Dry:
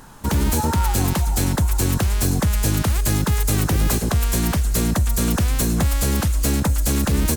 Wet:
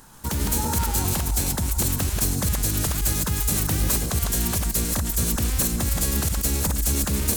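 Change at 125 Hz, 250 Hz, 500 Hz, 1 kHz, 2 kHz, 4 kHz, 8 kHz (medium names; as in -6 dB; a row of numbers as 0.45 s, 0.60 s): -5.5 dB, -6.0 dB, -5.5 dB, -5.5 dB, -4.5 dB, -1.0 dB, +1.5 dB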